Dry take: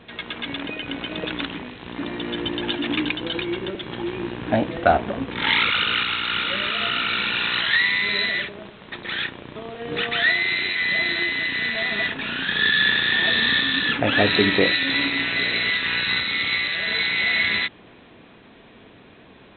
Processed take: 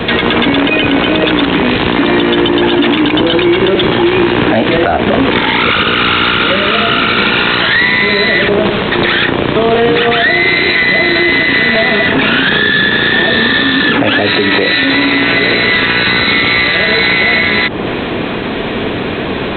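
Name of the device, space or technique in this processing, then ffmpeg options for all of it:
mastering chain: -filter_complex "[0:a]equalizer=f=400:t=o:w=0.77:g=3,acrossover=split=220|610|1300[s0][s1][s2][s3];[s0]acompressor=threshold=0.00891:ratio=4[s4];[s1]acompressor=threshold=0.0251:ratio=4[s5];[s2]acompressor=threshold=0.0158:ratio=4[s6];[s3]acompressor=threshold=0.02:ratio=4[s7];[s4][s5][s6][s7]amix=inputs=4:normalize=0,acompressor=threshold=0.0251:ratio=2.5,alimiter=level_in=37.6:limit=0.891:release=50:level=0:latency=1,volume=0.891"

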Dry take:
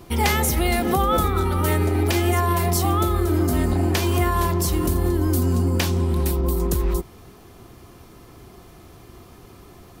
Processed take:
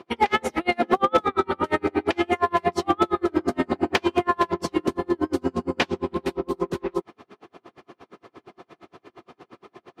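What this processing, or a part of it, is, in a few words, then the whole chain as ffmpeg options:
helicopter radio: -af "highpass=300,lowpass=2900,aeval=exprs='val(0)*pow(10,-37*(0.5-0.5*cos(2*PI*8.6*n/s))/20)':c=same,asoftclip=type=hard:threshold=0.126,volume=2.51"

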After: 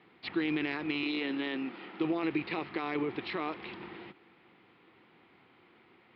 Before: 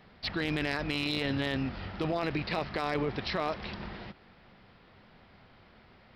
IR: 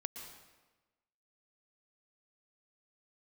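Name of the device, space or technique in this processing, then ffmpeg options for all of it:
kitchen radio: -filter_complex "[0:a]asettb=1/sr,asplit=3[s0][s1][s2];[s0]atrim=end=1.034[s3];[s1]atrim=start=1.03:end=2,asetpts=PTS-STARTPTS,afade=t=in:d=0.004:c=qsin,afade=t=out:st=0.966:d=0.004:c=qsin,highpass=f=190:w=0.5412,highpass=f=190:w=1.3066[s4];[s2]atrim=start=1.996[s5];[s3][s4]acrossfade=d=0.004:c1=hsin:c2=qsin[s6];[s6][s5]acrossfade=d=0.004:c1=qsin:c2=hsin,highpass=200,equalizer=f=210:t=q:w=4:g=-5,equalizer=f=330:t=q:w=4:g=9,equalizer=f=610:t=q:w=4:g=-10,equalizer=f=1600:t=q:w=4:g=-4,equalizer=f=2300:t=q:w=4:g=3,lowpass=f=3500:w=0.5412,lowpass=f=3500:w=1.3066,volume=0.794"

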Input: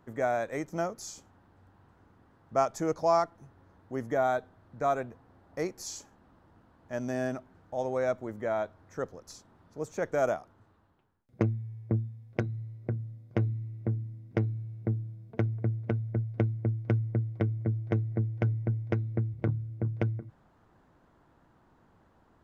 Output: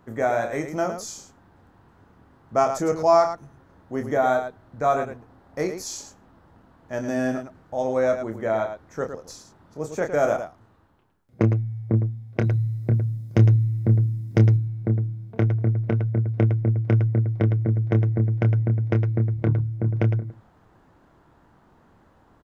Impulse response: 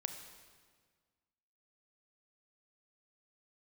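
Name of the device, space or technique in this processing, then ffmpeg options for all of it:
slapback doubling: -filter_complex "[0:a]asettb=1/sr,asplit=3[s0][s1][s2];[s0]atrim=end=12.434[s3];[s1]atrim=start=12.43:end=14.57,asetpts=PTS-STARTPTS,afade=t=in:d=0.004:c=qsin,afade=t=out:st=2.136:d=0.004:c=qsin,bass=f=250:g=5,treble=f=4000:g=14[s4];[s2]atrim=start=14.566[s5];[s3][s4]acrossfade=d=0.004:c1=hsin:c2=qsin[s6];[s6][s5]acrossfade=d=0.004:c1=qsin:c2=hsin,asplit=3[s7][s8][s9];[s8]adelay=27,volume=0.447[s10];[s9]adelay=109,volume=0.376[s11];[s7][s10][s11]amix=inputs=3:normalize=0,volume=1.88"

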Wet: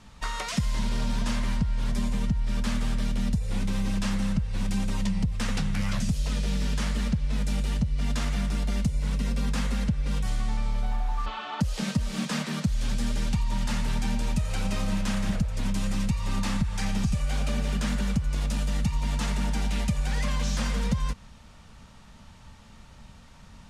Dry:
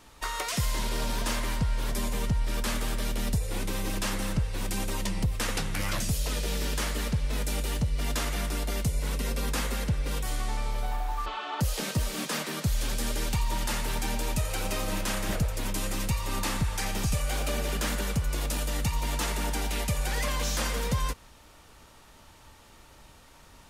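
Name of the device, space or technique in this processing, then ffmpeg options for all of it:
jukebox: -af "lowpass=7600,lowshelf=f=260:t=q:w=3:g=6,acompressor=threshold=0.0794:ratio=6"

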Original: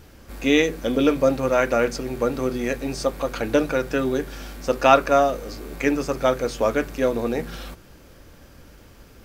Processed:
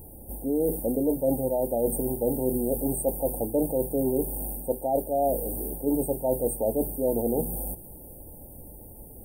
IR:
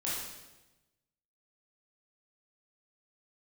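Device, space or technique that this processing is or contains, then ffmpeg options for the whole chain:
compression on the reversed sound: -af "areverse,acompressor=threshold=0.0708:ratio=6,areverse,aemphasis=mode=production:type=50kf,afftfilt=real='re*(1-between(b*sr/4096,910,8200))':imag='im*(1-between(b*sr/4096,910,8200))':win_size=4096:overlap=0.75,adynamicequalizer=threshold=0.00447:dfrequency=2200:dqfactor=0.7:tfrequency=2200:tqfactor=0.7:attack=5:release=100:ratio=0.375:range=2:mode=boostabove:tftype=highshelf,volume=1.19"

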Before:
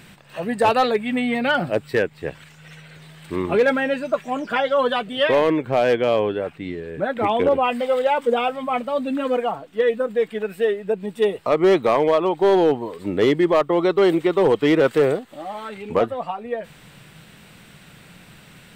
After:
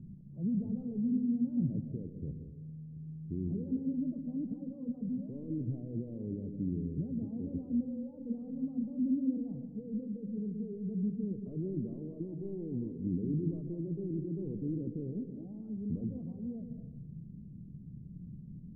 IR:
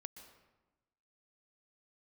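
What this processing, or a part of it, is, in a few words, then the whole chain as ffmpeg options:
club heard from the street: -filter_complex "[0:a]alimiter=limit=0.0794:level=0:latency=1:release=14,lowpass=f=240:w=0.5412,lowpass=f=240:w=1.3066[s0];[1:a]atrim=start_sample=2205[s1];[s0][s1]afir=irnorm=-1:irlink=0,volume=2.37"

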